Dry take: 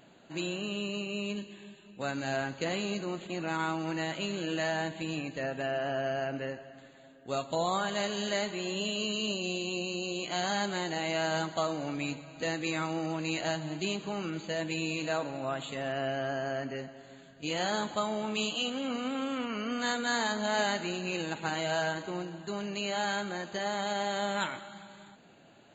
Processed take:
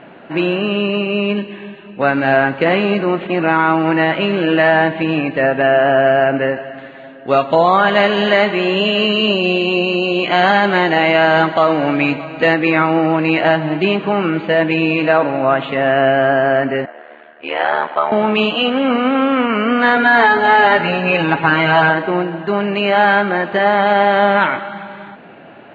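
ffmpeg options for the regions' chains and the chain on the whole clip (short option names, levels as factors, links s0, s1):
-filter_complex "[0:a]asettb=1/sr,asplit=3[s0][s1][s2];[s0]atrim=end=6.564[s3];[s1]atrim=start=6.56:end=12.54,asetpts=PTS-STARTPTS,afade=t=in:d=0.004:c=qsin,afade=t=out:st=5.976:d=0.004:c=qsin,highshelf=f=4600:g=10.5,aecho=1:1:621:0.0891,atrim=end_sample=263718[s4];[s2]atrim=start=12.536[s5];[s3][s4]acrossfade=d=0.004:c1=hsin:c2=qsin[s6];[s6][s5]acrossfade=d=0.004:c1=qsin:c2=hsin,asettb=1/sr,asplit=3[s7][s8][s9];[s7]atrim=end=16.854[s10];[s8]atrim=start=16.85:end=18.12,asetpts=PTS-STARTPTS,afade=t=in:d=0.004:c=qsin,afade=t=out:st=1.266:d=0.004:c=qsin,highpass=560,lowpass=3000,aeval=exprs='val(0)*sin(2*PI*38*n/s)':c=same[s11];[s9]atrim=start=18.116[s12];[s10][s11]acrossfade=d=0.004:c1=hsin:c2=qsin[s13];[s13][s12]acrossfade=d=0.004:c1=qsin:c2=hsin,asettb=1/sr,asplit=3[s14][s15][s16];[s14]atrim=end=19.964[s17];[s15]atrim=start=19.96:end=21.9,asetpts=PTS-STARTPTS,afade=t=in:d=0.004:c=qsin,afade=t=out:st=1.936:d=0.004:c=qsin,aeval=exprs='val(0)+0.000794*(sin(2*PI*60*n/s)+sin(2*PI*2*60*n/s)/2+sin(2*PI*3*60*n/s)/3+sin(2*PI*4*60*n/s)/4+sin(2*PI*5*60*n/s)/5)':c=same,aecho=1:1:7.1:0.77,atrim=end_sample=85554[s18];[s16]atrim=start=21.896[s19];[s17][s18]acrossfade=d=0.004:c1=hsin:c2=qsin[s20];[s20][s19]acrossfade=d=0.004:c1=qsin:c2=hsin,lowpass=f=2500:w=0.5412,lowpass=f=2500:w=1.3066,lowshelf=f=140:g=-11.5,alimiter=level_in=12.6:limit=0.891:release=50:level=0:latency=1,volume=0.891"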